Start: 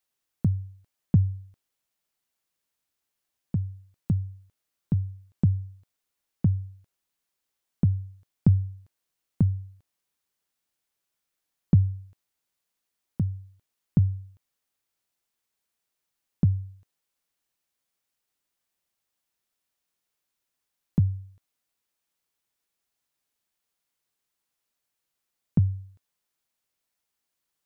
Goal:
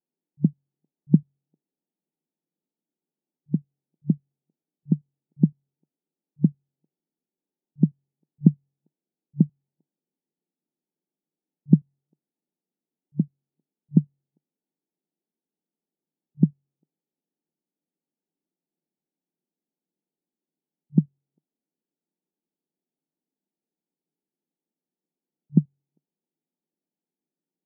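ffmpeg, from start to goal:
-af "lowshelf=f=460:t=q:w=1.5:g=10,afftfilt=real='re*between(b*sr/4096,150,930)':imag='im*between(b*sr/4096,150,930)':win_size=4096:overlap=0.75,volume=0.631"

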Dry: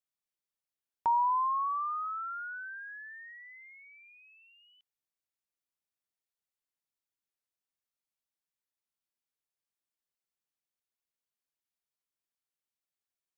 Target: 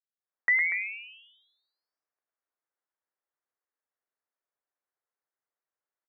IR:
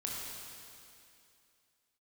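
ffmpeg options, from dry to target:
-af "dynaudnorm=f=360:g=3:m=6.31,asetrate=97020,aresample=44100,aecho=1:1:107.9|239.1:0.398|0.282,highpass=f=450:t=q:w=0.5412,highpass=f=450:t=q:w=1.307,lowpass=f=2000:t=q:w=0.5176,lowpass=f=2000:t=q:w=0.7071,lowpass=f=2000:t=q:w=1.932,afreqshift=-99,volume=0.422"

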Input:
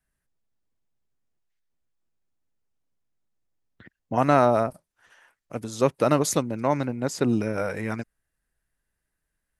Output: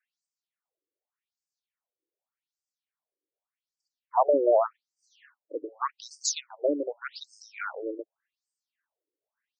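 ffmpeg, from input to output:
-af "afftfilt=real='re*between(b*sr/1024,390*pow(6500/390,0.5+0.5*sin(2*PI*0.85*pts/sr))/1.41,390*pow(6500/390,0.5+0.5*sin(2*PI*0.85*pts/sr))*1.41)':imag='im*between(b*sr/1024,390*pow(6500/390,0.5+0.5*sin(2*PI*0.85*pts/sr))/1.41,390*pow(6500/390,0.5+0.5*sin(2*PI*0.85*pts/sr))*1.41)':win_size=1024:overlap=0.75,volume=1.41"

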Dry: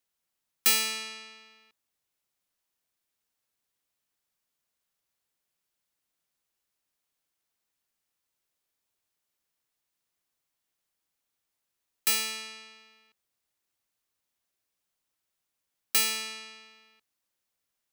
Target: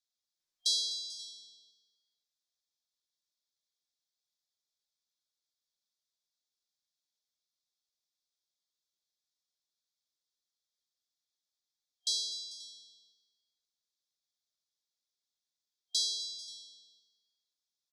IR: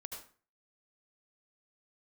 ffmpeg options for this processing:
-filter_complex "[0:a]highpass=200,afftfilt=real='re*(1-between(b*sr/4096,720,3200))':imag='im*(1-between(b*sr/4096,720,3200))':win_size=4096:overlap=0.75,lowpass=f=5400:w=0.5412,lowpass=f=5400:w=1.3066,aderivative,asplit=2[s0][s1];[s1]aecho=0:1:251|442|532:0.15|0.119|0.1[s2];[s0][s2]amix=inputs=2:normalize=0,volume=1.78" -ar 48000 -c:a libopus -b:a 48k

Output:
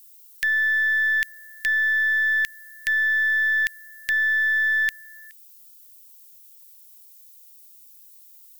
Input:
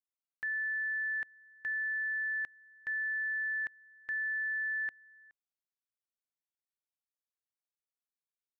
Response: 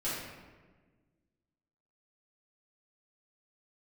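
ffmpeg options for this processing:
-af "aemphasis=mode=production:type=50fm,aexciter=amount=8.9:drive=8.5:freq=2100,aeval=exprs='0.251*(cos(1*acos(clip(val(0)/0.251,-1,1)))-cos(1*PI/2))+0.00708*(cos(6*acos(clip(val(0)/0.251,-1,1)))-cos(6*PI/2))':c=same,volume=1.5"

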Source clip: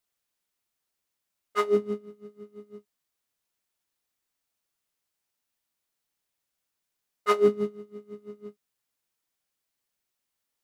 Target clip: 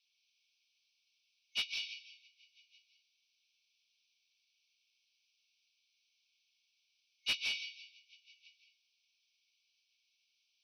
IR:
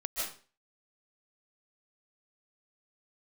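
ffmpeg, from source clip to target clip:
-filter_complex "[0:a]asplit=2[s0][s1];[1:a]atrim=start_sample=2205,asetrate=41013,aresample=44100[s2];[s1][s2]afir=irnorm=-1:irlink=0,volume=0.631[s3];[s0][s3]amix=inputs=2:normalize=0,afftfilt=real='re*between(b*sr/4096,2200,6200)':imag='im*between(b*sr/4096,2200,6200)':win_size=4096:overlap=0.75,asplit=2[s4][s5];[s5]highpass=f=720:p=1,volume=5.62,asoftclip=type=tanh:threshold=0.0794[s6];[s4][s6]amix=inputs=2:normalize=0,lowpass=f=3300:p=1,volume=0.501"

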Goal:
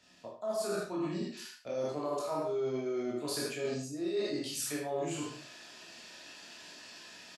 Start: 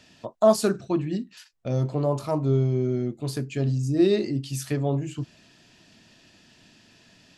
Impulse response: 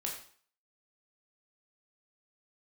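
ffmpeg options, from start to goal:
-filter_complex "[0:a]equalizer=f=2900:w=3.3:g=-3.5,aecho=1:1:27|77:0.631|0.562[s0];[1:a]atrim=start_sample=2205,afade=t=out:st=0.35:d=0.01,atrim=end_sample=15876[s1];[s0][s1]afir=irnorm=-1:irlink=0,acrossover=split=350[s2][s3];[s3]dynaudnorm=f=490:g=3:m=3.98[s4];[s2][s4]amix=inputs=2:normalize=0,lowshelf=f=250:g=-9,areverse,acompressor=threshold=0.0562:ratio=6,areverse,volume=0.447"

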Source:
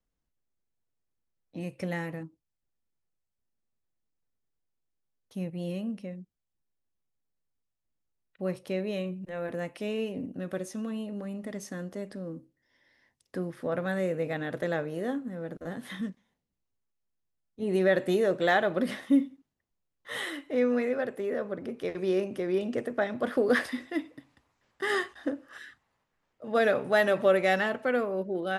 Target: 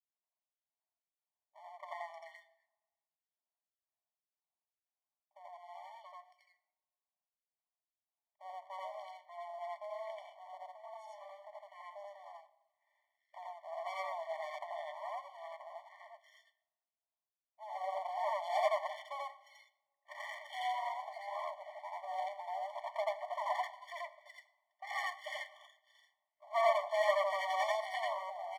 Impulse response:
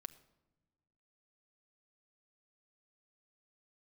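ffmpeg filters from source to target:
-filter_complex "[0:a]lowshelf=f=290:g=8.5,asettb=1/sr,asplit=3[s0][s1][s2];[s0]atrim=end=19.104[s3];[s1]atrim=start=19.1:end=20.13,asetpts=PTS-STARTPTS,afade=t=in:d=0.004:c=qsin,afade=t=out:st=1.026:d=0.004:c=qsin,acontrast=89[s4];[s2]atrim=start=20.126[s5];[s3][s4]acrossfade=d=0.004:c1=hsin:c2=qsin[s6];[s6][s5]acrossfade=d=0.004:c1=qsin:c2=hsin,acrossover=split=410[s7][s8];[s7]aeval=exprs='val(0)*(1-1/2+1/2*cos(2*PI*1.9*n/s))':c=same[s9];[s8]aeval=exprs='val(0)*(1-1/2-1/2*cos(2*PI*1.9*n/s))':c=same[s10];[s9][s10]amix=inputs=2:normalize=0,acrossover=split=2100[s11][s12];[s12]adelay=340[s13];[s11][s13]amix=inputs=2:normalize=0,adynamicsmooth=sensitivity=4.5:basefreq=1900,aeval=exprs='max(val(0),0)':c=same,asplit=2[s14][s15];[1:a]atrim=start_sample=2205,adelay=85[s16];[s15][s16]afir=irnorm=-1:irlink=0,volume=2.24[s17];[s14][s17]amix=inputs=2:normalize=0,afftfilt=real='re*eq(mod(floor(b*sr/1024/590),2),1)':imag='im*eq(mod(floor(b*sr/1024/590),2),1)':win_size=1024:overlap=0.75,volume=1.12"

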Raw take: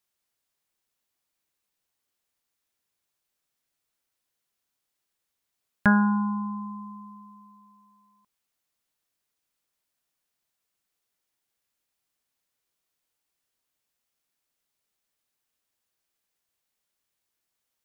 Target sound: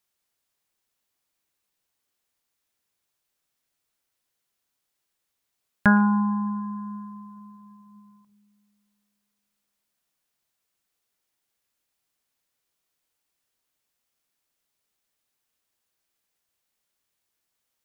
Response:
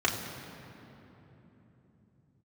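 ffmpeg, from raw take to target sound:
-filter_complex "[0:a]asplit=2[s0][s1];[1:a]atrim=start_sample=2205,lowshelf=f=210:g=-8,adelay=114[s2];[s1][s2]afir=irnorm=-1:irlink=0,volume=0.0251[s3];[s0][s3]amix=inputs=2:normalize=0,volume=1.26"

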